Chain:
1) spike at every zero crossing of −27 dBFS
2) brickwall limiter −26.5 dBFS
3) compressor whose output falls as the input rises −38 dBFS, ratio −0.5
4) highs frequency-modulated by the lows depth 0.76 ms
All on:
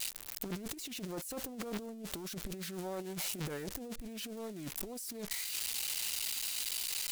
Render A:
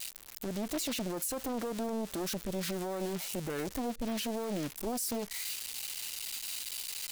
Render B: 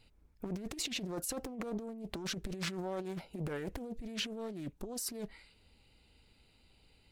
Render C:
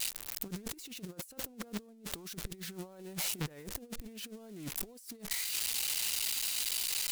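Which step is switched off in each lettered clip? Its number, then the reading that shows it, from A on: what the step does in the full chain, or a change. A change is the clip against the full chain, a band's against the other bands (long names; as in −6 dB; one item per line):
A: 3, change in crest factor −7.0 dB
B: 1, distortion level −8 dB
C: 2, average gain reduction 2.5 dB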